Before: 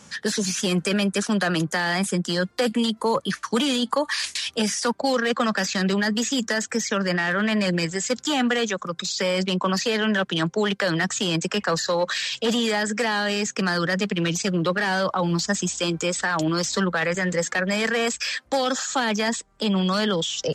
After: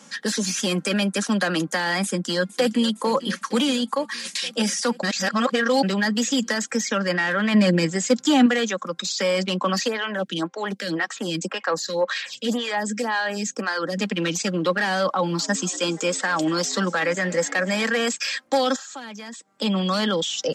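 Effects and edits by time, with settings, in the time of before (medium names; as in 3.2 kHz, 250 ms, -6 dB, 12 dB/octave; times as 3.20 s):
2.03–2.89 s: echo throw 460 ms, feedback 75%, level -15.5 dB
3.55–4.25 s: fade out, to -7.5 dB
5.03–5.83 s: reverse
7.54–8.46 s: bass shelf 370 Hz +9 dB
9.88–13.98 s: lamp-driven phase shifter 1.9 Hz
15.11–17.84 s: frequency-shifting echo 238 ms, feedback 63%, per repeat +100 Hz, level -20 dB
18.76–19.52 s: compression 2.5:1, threshold -42 dBFS
whole clip: high-pass 160 Hz 24 dB/octave; comb 3.7 ms, depth 38%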